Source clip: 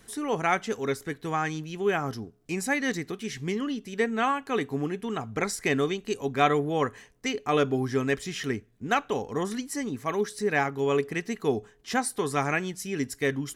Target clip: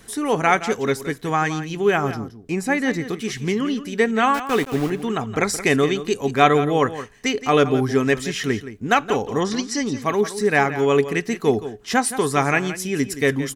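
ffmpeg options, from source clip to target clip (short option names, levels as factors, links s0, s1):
-filter_complex "[0:a]asettb=1/sr,asplit=3[s0][s1][s2];[s0]atrim=end=2.124[s3];[s1]atrim=start=2.12:end=3.04,asetpts=PTS-STARTPTS,afade=t=in:d=0.004:c=qsin,afade=t=out:st=0.916:d=0.004:c=qsin,highshelf=f=2400:g=-8.5[s4];[s2]atrim=start=3.036[s5];[s3][s4]acrossfade=d=0.004:c1=hsin:c2=qsin[s6];[s6][s5]acrossfade=d=0.004:c1=qsin:c2=hsin,asettb=1/sr,asplit=3[s7][s8][s9];[s7]atrim=end=4.344[s10];[s8]atrim=start=4.34:end=4.9,asetpts=PTS-STARTPTS,afade=t=in:d=0.004:c=qsin,afade=t=out:st=0.556:d=0.004:c=qsin,aeval=exprs='val(0)*gte(abs(val(0)),0.0188)':c=same[s11];[s9]atrim=start=4.896[s12];[s10][s11]acrossfade=d=0.004:c1=hsin:c2=qsin[s13];[s13][s12]acrossfade=d=0.004:c1=qsin:c2=hsin,asettb=1/sr,asplit=3[s14][s15][s16];[s14]atrim=end=9.404[s17];[s15]atrim=start=9.4:end=10.02,asetpts=PTS-STARTPTS,afade=t=in:d=0.004:c=qsin,afade=t=out:st=0.616:d=0.004:c=qsin,lowpass=f=5200:t=q:w=2.4[s18];[s16]atrim=start=10.016[s19];[s17][s18]acrossfade=d=0.004:c1=hsin:c2=qsin[s20];[s20][s19]acrossfade=d=0.004:c1=qsin:c2=hsin,aecho=1:1:171:0.224,volume=2.37"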